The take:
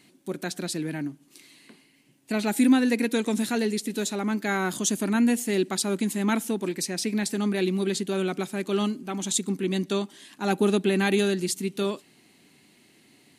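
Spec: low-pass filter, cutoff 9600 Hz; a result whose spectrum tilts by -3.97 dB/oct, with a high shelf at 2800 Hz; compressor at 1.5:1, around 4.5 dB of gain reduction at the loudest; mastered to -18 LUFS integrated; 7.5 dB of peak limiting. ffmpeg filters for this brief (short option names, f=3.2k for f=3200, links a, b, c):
-af "lowpass=9.6k,highshelf=f=2.8k:g=5,acompressor=threshold=-27dB:ratio=1.5,volume=11.5dB,alimiter=limit=-7.5dB:level=0:latency=1"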